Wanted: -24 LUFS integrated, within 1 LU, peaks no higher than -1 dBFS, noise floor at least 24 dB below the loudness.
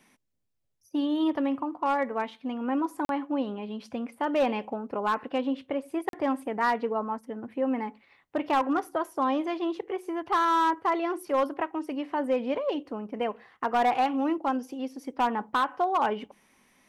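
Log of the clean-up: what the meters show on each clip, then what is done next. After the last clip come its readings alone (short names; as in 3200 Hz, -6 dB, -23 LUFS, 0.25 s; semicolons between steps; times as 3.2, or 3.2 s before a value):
clipped 0.6%; flat tops at -18.5 dBFS; dropouts 2; longest dropout 42 ms; loudness -29.0 LUFS; peak -18.5 dBFS; loudness target -24.0 LUFS
-> clip repair -18.5 dBFS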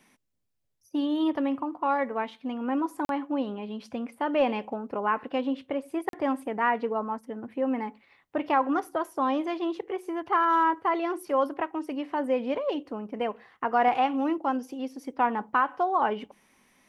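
clipped 0.0%; dropouts 2; longest dropout 42 ms
-> interpolate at 3.05/6.09, 42 ms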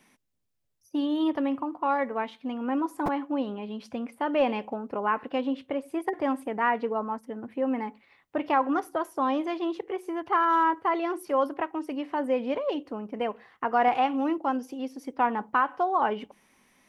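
dropouts 0; loudness -28.5 LUFS; peak -12.0 dBFS; loudness target -24.0 LUFS
-> gain +4.5 dB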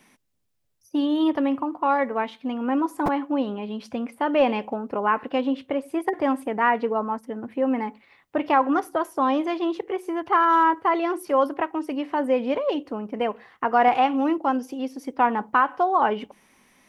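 loudness -24.0 LUFS; peak -7.5 dBFS; noise floor -63 dBFS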